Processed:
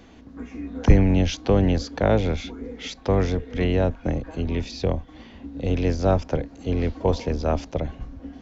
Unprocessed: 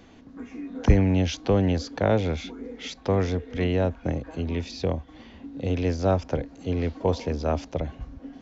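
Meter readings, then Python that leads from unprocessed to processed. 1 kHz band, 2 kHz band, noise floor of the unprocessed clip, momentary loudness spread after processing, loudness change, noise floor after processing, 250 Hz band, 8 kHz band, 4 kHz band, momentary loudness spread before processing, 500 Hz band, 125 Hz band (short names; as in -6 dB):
+2.0 dB, +2.0 dB, -50 dBFS, 14 LU, +2.5 dB, -47 dBFS, +2.0 dB, n/a, +2.0 dB, 15 LU, +2.0 dB, +2.5 dB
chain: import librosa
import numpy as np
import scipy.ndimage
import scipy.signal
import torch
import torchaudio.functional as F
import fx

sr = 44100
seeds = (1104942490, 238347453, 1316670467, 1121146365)

y = fx.octave_divider(x, sr, octaves=2, level_db=-5.0)
y = F.gain(torch.from_numpy(y), 2.0).numpy()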